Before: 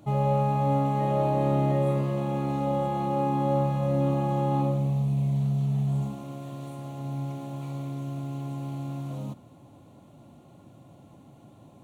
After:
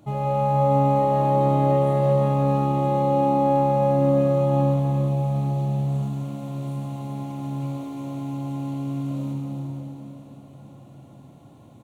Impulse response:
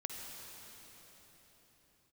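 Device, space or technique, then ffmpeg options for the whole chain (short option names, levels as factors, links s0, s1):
cave: -filter_complex "[0:a]aecho=1:1:347:0.335[s0];[1:a]atrim=start_sample=2205[s1];[s0][s1]afir=irnorm=-1:irlink=0,volume=1.33"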